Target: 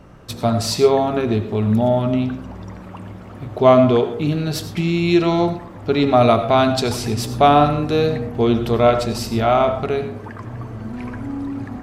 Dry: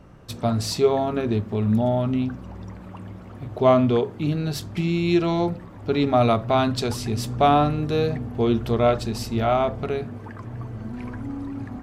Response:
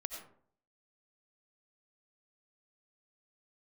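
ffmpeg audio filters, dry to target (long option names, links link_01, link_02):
-filter_complex "[0:a]asplit=2[link_01][link_02];[1:a]atrim=start_sample=2205,lowshelf=frequency=200:gain=-7.5[link_03];[link_02][link_03]afir=irnorm=-1:irlink=0,volume=1.5dB[link_04];[link_01][link_04]amix=inputs=2:normalize=0"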